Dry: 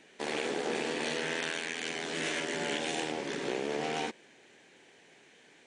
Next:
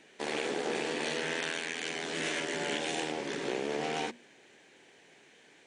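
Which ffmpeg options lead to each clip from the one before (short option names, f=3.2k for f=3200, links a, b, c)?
-af "bandreject=f=60:t=h:w=6,bandreject=f=120:t=h:w=6,bandreject=f=180:t=h:w=6,bandreject=f=240:t=h:w=6"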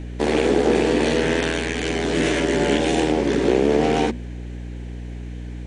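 -af "equalizer=f=240:t=o:w=2.8:g=12,aeval=exprs='val(0)+0.0126*(sin(2*PI*60*n/s)+sin(2*PI*2*60*n/s)/2+sin(2*PI*3*60*n/s)/3+sin(2*PI*4*60*n/s)/4+sin(2*PI*5*60*n/s)/5)':c=same,volume=7.5dB"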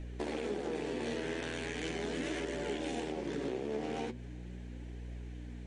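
-af "acompressor=threshold=-22dB:ratio=6,flanger=delay=1.5:depth=8.3:regen=59:speed=0.39:shape=triangular,volume=-7.5dB"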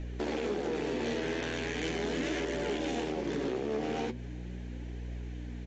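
-af "volume=31.5dB,asoftclip=hard,volume=-31.5dB,aresample=16000,aresample=44100,volume=4.5dB"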